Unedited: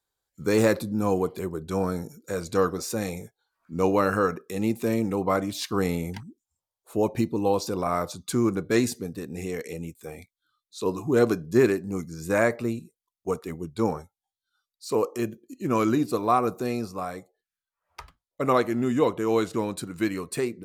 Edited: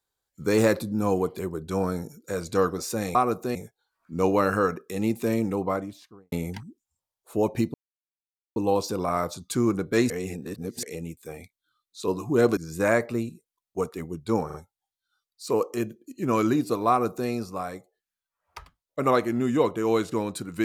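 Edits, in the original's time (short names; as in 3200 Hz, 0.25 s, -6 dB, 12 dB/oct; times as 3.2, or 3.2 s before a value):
5.01–5.92 studio fade out
7.34 insert silence 0.82 s
8.88–9.61 reverse
11.35–12.07 cut
13.96 stutter 0.04 s, 3 plays
16.31–16.71 copy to 3.15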